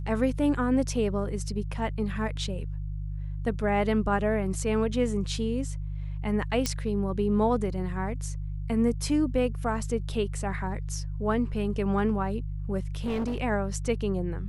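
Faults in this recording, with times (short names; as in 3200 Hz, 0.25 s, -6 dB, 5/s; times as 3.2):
hum 50 Hz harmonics 3 -33 dBFS
6.66 pop -12 dBFS
13.04–13.4 clipped -25.5 dBFS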